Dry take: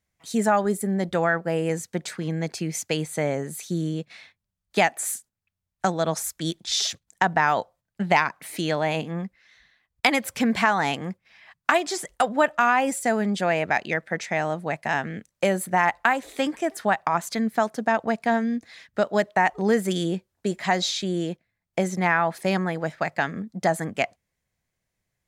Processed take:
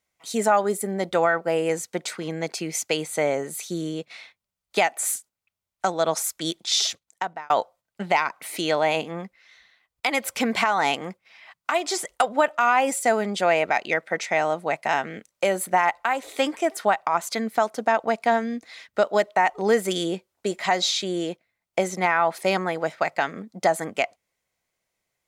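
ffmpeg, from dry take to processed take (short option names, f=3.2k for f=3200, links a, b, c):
-filter_complex "[0:a]asplit=2[a][b];[a]atrim=end=7.5,asetpts=PTS-STARTPTS,afade=t=out:st=6.7:d=0.8[c];[b]atrim=start=7.5,asetpts=PTS-STARTPTS,afade=t=in:d=0.004:c=hsin[d];[c][d]concat=n=2:v=0:a=1,bass=f=250:g=-14,treble=f=4k:g=-1,bandreject=f=1.7k:w=8.2,alimiter=limit=-12.5dB:level=0:latency=1:release=214,volume=4dB"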